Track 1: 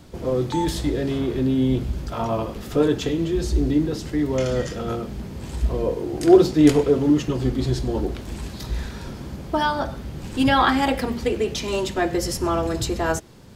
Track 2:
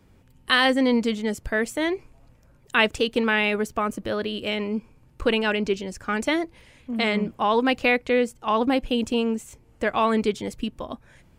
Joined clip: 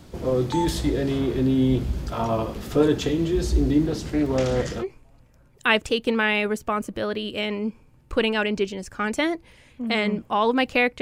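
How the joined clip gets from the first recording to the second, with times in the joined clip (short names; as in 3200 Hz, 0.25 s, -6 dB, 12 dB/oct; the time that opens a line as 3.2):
track 1
3.87–4.85 Doppler distortion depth 0.26 ms
4.82 switch to track 2 from 1.91 s, crossfade 0.06 s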